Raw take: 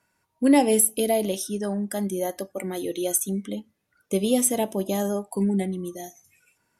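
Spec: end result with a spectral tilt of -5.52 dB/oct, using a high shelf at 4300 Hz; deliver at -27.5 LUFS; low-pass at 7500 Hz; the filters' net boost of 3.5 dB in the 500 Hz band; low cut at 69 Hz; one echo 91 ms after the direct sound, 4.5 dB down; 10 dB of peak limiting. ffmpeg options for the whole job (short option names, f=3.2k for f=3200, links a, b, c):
-af "highpass=69,lowpass=7.5k,equalizer=f=500:t=o:g=4.5,highshelf=f=4.3k:g=-7,alimiter=limit=-15.5dB:level=0:latency=1,aecho=1:1:91:0.596,volume=-2dB"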